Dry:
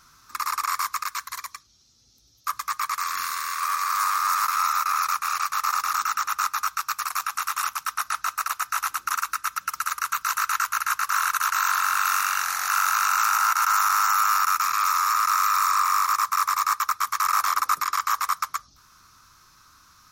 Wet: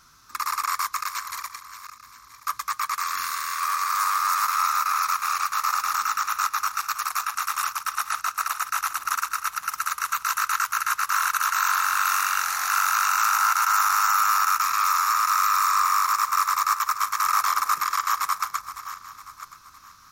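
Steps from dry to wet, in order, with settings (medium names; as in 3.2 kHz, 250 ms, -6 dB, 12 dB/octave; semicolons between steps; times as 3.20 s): backward echo that repeats 487 ms, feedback 46%, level -12 dB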